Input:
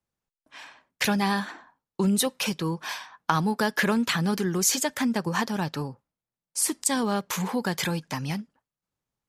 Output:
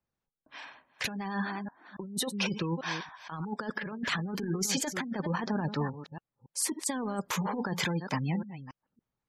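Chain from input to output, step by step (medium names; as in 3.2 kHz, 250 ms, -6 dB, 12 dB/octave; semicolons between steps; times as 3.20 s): chunks repeated in reverse 281 ms, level -13 dB; treble shelf 5.6 kHz -8 dB; spectral gate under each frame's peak -25 dB strong; compressor with a negative ratio -28 dBFS, ratio -0.5; trim -3 dB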